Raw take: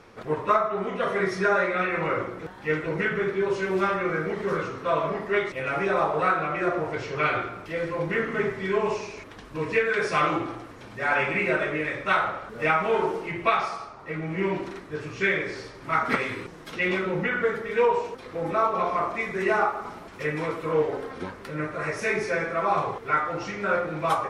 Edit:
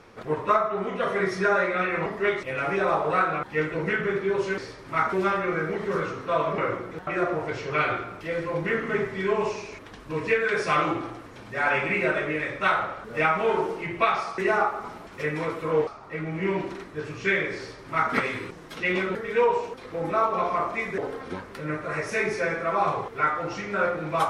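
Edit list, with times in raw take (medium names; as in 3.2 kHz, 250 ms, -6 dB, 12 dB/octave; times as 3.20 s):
2.06–2.55 s: swap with 5.15–6.52 s
15.54–16.09 s: copy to 3.70 s
17.11–17.56 s: delete
19.39–20.88 s: move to 13.83 s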